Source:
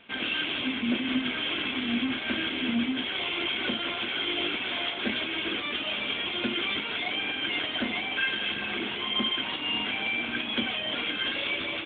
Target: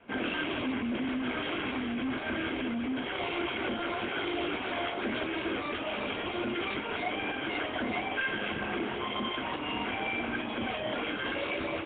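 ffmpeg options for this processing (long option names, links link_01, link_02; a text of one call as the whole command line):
ffmpeg -i in.wav -af "adynamicsmooth=sensitivity=0.5:basefreq=1200,alimiter=level_in=4.5dB:limit=-24dB:level=0:latency=1:release=11,volume=-4.5dB,adynamicequalizer=threshold=0.00355:dfrequency=210:dqfactor=0.95:tfrequency=210:tqfactor=0.95:attack=5:release=100:ratio=0.375:range=3.5:mode=cutabove:tftype=bell,volume=7dB" -ar 8000 -c:a nellymoser out.flv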